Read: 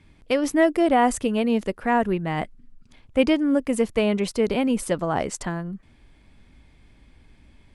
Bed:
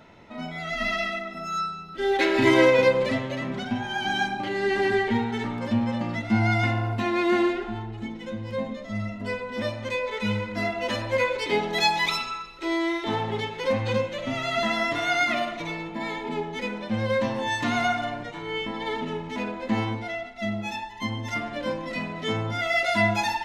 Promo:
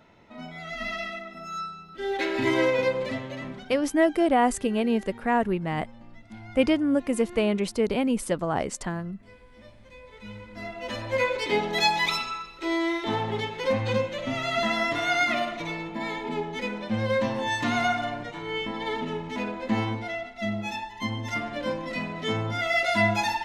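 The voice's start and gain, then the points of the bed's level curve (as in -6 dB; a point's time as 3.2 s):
3.40 s, -2.5 dB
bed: 3.47 s -5.5 dB
3.91 s -22 dB
9.88 s -22 dB
11.25 s -0.5 dB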